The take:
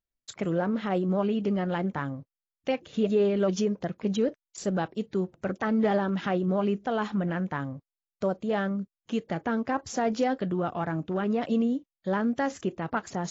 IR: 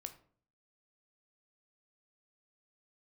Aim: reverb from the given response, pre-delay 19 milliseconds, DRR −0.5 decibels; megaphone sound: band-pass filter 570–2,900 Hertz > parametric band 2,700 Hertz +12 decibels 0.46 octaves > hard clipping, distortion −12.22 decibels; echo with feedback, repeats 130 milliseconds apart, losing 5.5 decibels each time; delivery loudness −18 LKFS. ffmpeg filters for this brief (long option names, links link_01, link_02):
-filter_complex "[0:a]aecho=1:1:130|260|390|520|650|780|910:0.531|0.281|0.149|0.079|0.0419|0.0222|0.0118,asplit=2[link_01][link_02];[1:a]atrim=start_sample=2205,adelay=19[link_03];[link_02][link_03]afir=irnorm=-1:irlink=0,volume=4.5dB[link_04];[link_01][link_04]amix=inputs=2:normalize=0,highpass=570,lowpass=2900,equalizer=frequency=2700:width_type=o:width=0.46:gain=12,asoftclip=type=hard:threshold=-24dB,volume=13dB"